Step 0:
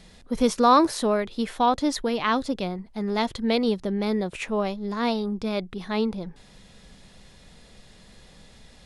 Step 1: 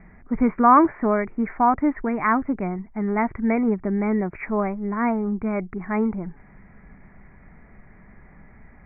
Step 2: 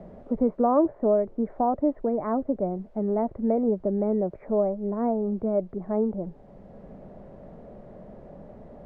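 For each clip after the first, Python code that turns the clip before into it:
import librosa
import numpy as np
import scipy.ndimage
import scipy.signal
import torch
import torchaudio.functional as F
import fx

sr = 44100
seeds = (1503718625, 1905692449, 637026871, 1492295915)

y1 = scipy.signal.sosfilt(scipy.signal.cheby1(8, 1.0, 2300.0, 'lowpass', fs=sr, output='sos'), x)
y1 = fx.peak_eq(y1, sr, hz=510.0, db=-12.5, octaves=0.32)
y1 = y1 * librosa.db_to_amplitude(4.5)
y2 = fx.dmg_noise_colour(y1, sr, seeds[0], colour='blue', level_db=-40.0)
y2 = fx.lowpass_res(y2, sr, hz=570.0, q=4.9)
y2 = fx.band_squash(y2, sr, depth_pct=40)
y2 = y2 * librosa.db_to_amplitude(-6.0)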